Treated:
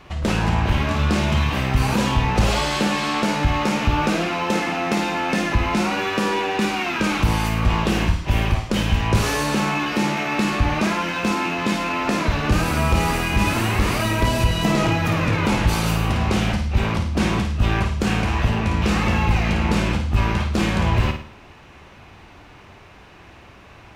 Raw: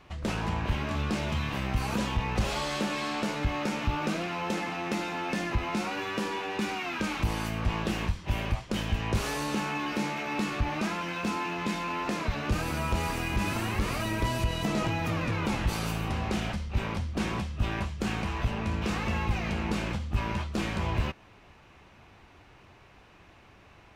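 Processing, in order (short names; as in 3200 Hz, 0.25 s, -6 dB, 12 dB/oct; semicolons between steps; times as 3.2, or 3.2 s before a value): flutter echo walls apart 9.2 m, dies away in 0.46 s; gain +9 dB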